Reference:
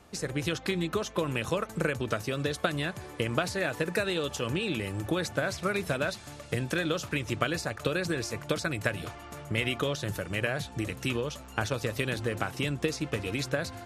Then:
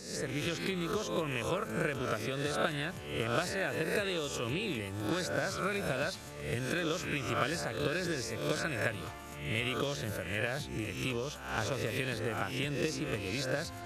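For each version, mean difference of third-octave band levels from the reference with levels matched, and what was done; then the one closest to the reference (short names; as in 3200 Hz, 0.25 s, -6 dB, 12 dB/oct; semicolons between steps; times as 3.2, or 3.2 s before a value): 4.0 dB: spectral swells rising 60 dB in 0.67 s; reverse; upward compressor, threshold -33 dBFS; reverse; gain -6 dB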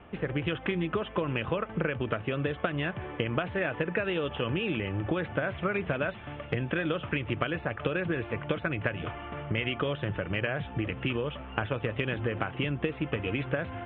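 8.0 dB: steep low-pass 3300 Hz 96 dB/oct; compressor 2.5:1, threshold -33 dBFS, peak gain reduction 8 dB; gain +5 dB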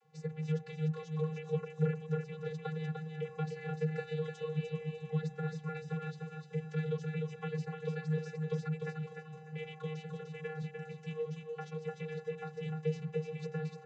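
15.0 dB: vocoder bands 32, square 156 Hz; on a send: feedback echo 0.299 s, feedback 29%, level -5 dB; on the sum: gain -6 dB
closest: first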